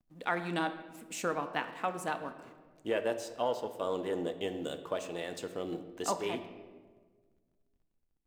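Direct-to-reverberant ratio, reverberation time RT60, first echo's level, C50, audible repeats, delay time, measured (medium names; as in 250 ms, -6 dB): 8.0 dB, 1.5 s, no echo, 11.0 dB, no echo, no echo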